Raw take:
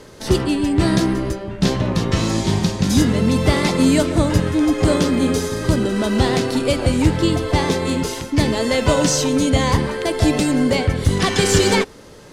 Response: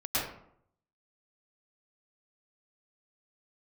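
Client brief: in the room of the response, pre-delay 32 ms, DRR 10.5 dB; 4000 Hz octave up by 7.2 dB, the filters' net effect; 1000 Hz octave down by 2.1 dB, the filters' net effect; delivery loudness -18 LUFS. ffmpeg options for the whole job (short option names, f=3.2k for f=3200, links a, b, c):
-filter_complex "[0:a]equalizer=f=1k:t=o:g=-3,equalizer=f=4k:t=o:g=9,asplit=2[a][b];[1:a]atrim=start_sample=2205,adelay=32[c];[b][c]afir=irnorm=-1:irlink=0,volume=-19dB[d];[a][d]amix=inputs=2:normalize=0,volume=-1.5dB"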